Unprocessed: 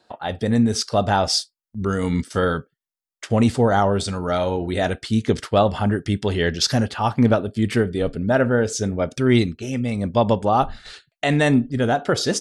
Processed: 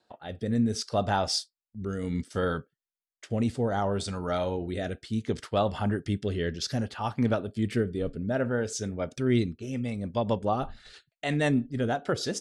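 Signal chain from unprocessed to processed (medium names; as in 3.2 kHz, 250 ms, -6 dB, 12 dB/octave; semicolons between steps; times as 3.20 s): rotary cabinet horn 0.65 Hz, later 6.3 Hz, at 9.49 s; trim -7 dB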